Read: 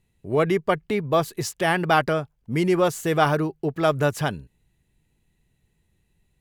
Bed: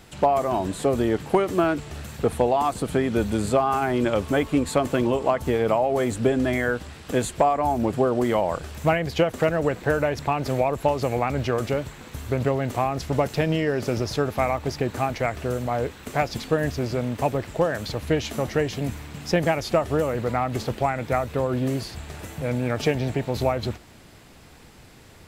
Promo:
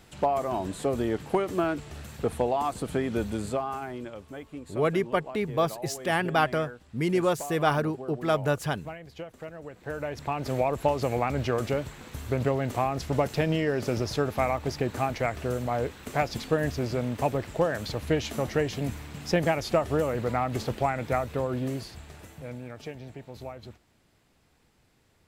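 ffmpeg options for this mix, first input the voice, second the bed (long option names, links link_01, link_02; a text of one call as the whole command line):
ffmpeg -i stem1.wav -i stem2.wav -filter_complex "[0:a]adelay=4450,volume=-4.5dB[link_01];[1:a]volume=10.5dB,afade=type=out:start_time=3.15:duration=1:silence=0.211349,afade=type=in:start_time=9.72:duration=0.98:silence=0.158489,afade=type=out:start_time=21.05:duration=1.7:silence=0.199526[link_02];[link_01][link_02]amix=inputs=2:normalize=0" out.wav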